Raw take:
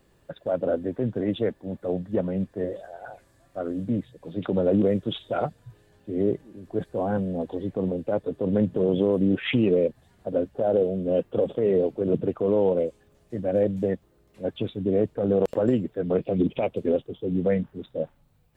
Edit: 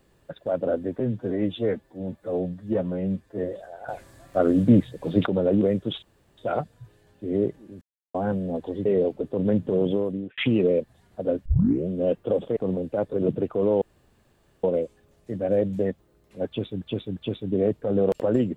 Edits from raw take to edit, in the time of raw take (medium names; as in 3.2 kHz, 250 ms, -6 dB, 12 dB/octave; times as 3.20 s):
1.00–2.59 s: stretch 1.5×
3.09–4.47 s: gain +10 dB
5.23 s: insert room tone 0.35 s
6.67–7.00 s: mute
7.71–8.28 s: swap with 11.64–11.99 s
8.91–9.45 s: fade out
10.53 s: tape start 0.43 s
12.67 s: insert room tone 0.82 s
14.50–14.85 s: loop, 3 plays